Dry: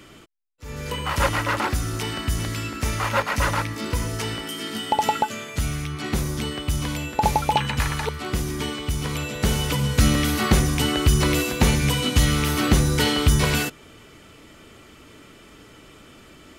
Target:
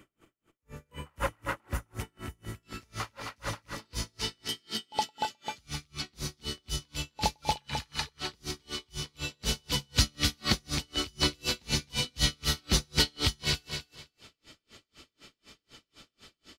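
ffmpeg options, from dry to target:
ffmpeg -i in.wav -af "asetnsamples=nb_out_samples=441:pad=0,asendcmd='2.63 equalizer g 7;3.85 equalizer g 15',equalizer=frequency=4500:width=1.1:gain=-7.5,aecho=1:1:260|520|780:0.422|0.0801|0.0152,aeval=exprs='val(0)*pow(10,-39*(0.5-0.5*cos(2*PI*4*n/s))/20)':channel_layout=same,volume=-7.5dB" out.wav

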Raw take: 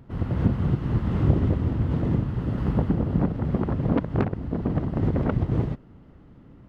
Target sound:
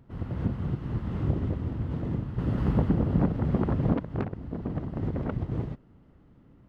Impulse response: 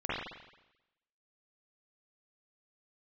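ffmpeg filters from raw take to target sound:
-filter_complex "[0:a]asettb=1/sr,asplit=3[link_01][link_02][link_03];[link_01]atrim=end=2.384[link_04];[link_02]atrim=start=2.38:end=3.94,asetpts=PTS-STARTPTS,afade=type=in:duration=0.004:curve=qsin,afade=type=out:start_time=1.556:duration=0.004:curve=qsin,acontrast=63[link_05];[link_03]atrim=start=3.936[link_06];[link_04][link_05]acrossfade=duration=0.004:curve1=hsin:curve2=qsin[link_07];[link_07][link_06]acrossfade=duration=0.004:curve1=qsin:curve2=hsin,volume=-7dB"

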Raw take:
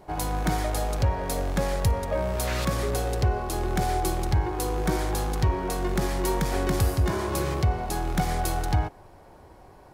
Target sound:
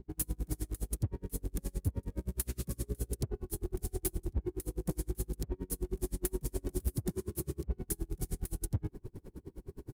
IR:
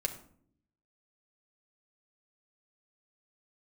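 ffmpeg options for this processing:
-filter_complex "[0:a]firequalizer=gain_entry='entry(390,0);entry(640,-25);entry(920,-20);entry(9200,8)':delay=0.05:min_phase=1,areverse,acompressor=mode=upward:threshold=-24dB:ratio=2.5,areverse,asoftclip=type=hard:threshold=-21.5dB,aeval=exprs='val(0)+0.00631*(sin(2*PI*60*n/s)+sin(2*PI*2*60*n/s)/2+sin(2*PI*3*60*n/s)/3+sin(2*PI*4*60*n/s)/4+sin(2*PI*5*60*n/s)/5)':channel_layout=same,acrossover=split=860|4100[link_01][link_02][link_03];[link_03]aeval=exprs='sgn(val(0))*max(abs(val(0))-0.00316,0)':channel_layout=same[link_04];[link_01][link_02][link_04]amix=inputs=3:normalize=0,aeval=exprs='val(0)*pow(10,-36*(0.5-0.5*cos(2*PI*9.6*n/s))/20)':channel_layout=same,volume=-2.5dB"

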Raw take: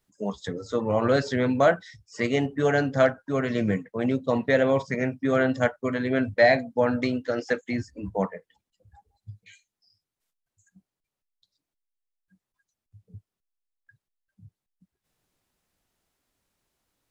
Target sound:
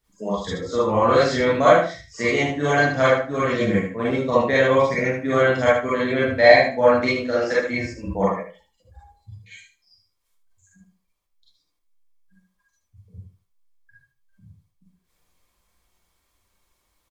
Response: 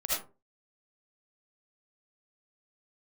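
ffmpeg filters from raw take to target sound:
-filter_complex "[0:a]aecho=1:1:76|152|228:0.398|0.0756|0.0144[link_01];[1:a]atrim=start_sample=2205,asetrate=74970,aresample=44100[link_02];[link_01][link_02]afir=irnorm=-1:irlink=0,volume=5dB"

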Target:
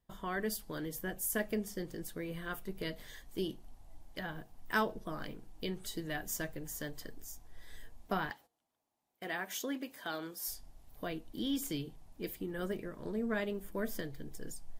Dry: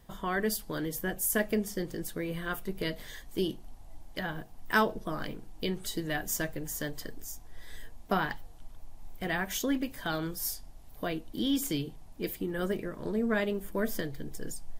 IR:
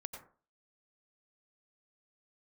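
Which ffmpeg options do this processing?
-filter_complex "[0:a]asettb=1/sr,asplit=3[link_01][link_02][link_03];[link_01]atrim=end=8.304[link_04];[link_02]atrim=start=8.3:end=10.48,asetpts=PTS-STARTPTS,afade=type=in:duration=0.004:curve=qsin,afade=type=out:start_time=2.176:duration=0.004:curve=qsin,highpass=280[link_05];[link_03]atrim=start=10.476[link_06];[link_04][link_05]acrossfade=duration=0.004:curve1=hsin:curve2=qsin[link_07];[link_07][link_06]acrossfade=duration=0.004:curve1=qsin:curve2=hsin,agate=range=-16dB:threshold=-50dB:ratio=16:detection=peak,volume=-6dB"

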